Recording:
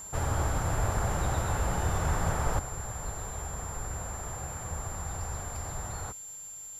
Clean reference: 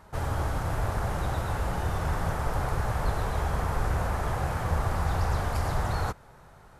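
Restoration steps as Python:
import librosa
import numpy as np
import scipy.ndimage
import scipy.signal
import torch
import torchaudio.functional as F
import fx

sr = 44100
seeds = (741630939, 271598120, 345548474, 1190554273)

y = fx.notch(x, sr, hz=7300.0, q=30.0)
y = fx.noise_reduce(y, sr, print_start_s=6.15, print_end_s=6.65, reduce_db=8.0)
y = fx.fix_level(y, sr, at_s=2.59, step_db=10.0)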